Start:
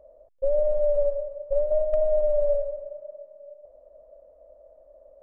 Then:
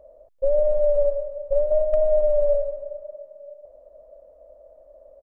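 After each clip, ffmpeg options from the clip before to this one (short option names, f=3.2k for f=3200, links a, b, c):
-af "aecho=1:1:396:0.0668,volume=3dB"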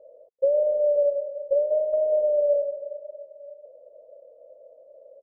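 -af "bandpass=f=470:t=q:w=5.4:csg=0,volume=7dB"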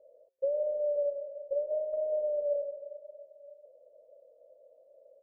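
-af "flanger=delay=5.1:depth=3.9:regen=-90:speed=0.55:shape=triangular,volume=-4.5dB"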